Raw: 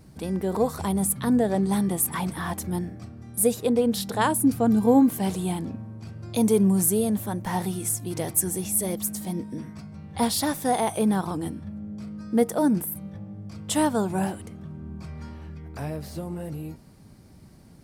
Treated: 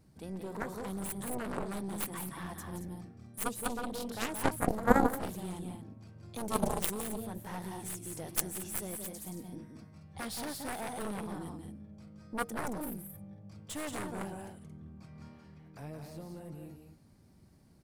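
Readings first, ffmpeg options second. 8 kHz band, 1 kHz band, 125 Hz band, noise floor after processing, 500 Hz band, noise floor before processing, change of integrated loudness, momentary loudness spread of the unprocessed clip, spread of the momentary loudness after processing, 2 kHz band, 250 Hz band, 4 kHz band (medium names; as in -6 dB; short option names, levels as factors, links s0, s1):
-12.5 dB, -8.0 dB, -12.5 dB, -60 dBFS, -12.0 dB, -50 dBFS, -12.5 dB, 18 LU, 18 LU, -4.5 dB, -14.5 dB, -10.0 dB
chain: -af "aecho=1:1:174.9|224.5:0.501|0.355,aeval=exprs='0.501*(cos(1*acos(clip(val(0)/0.501,-1,1)))-cos(1*PI/2))+0.0794*(cos(2*acos(clip(val(0)/0.501,-1,1)))-cos(2*PI/2))+0.2*(cos(3*acos(clip(val(0)/0.501,-1,1)))-cos(3*PI/2))':c=same,volume=1.19"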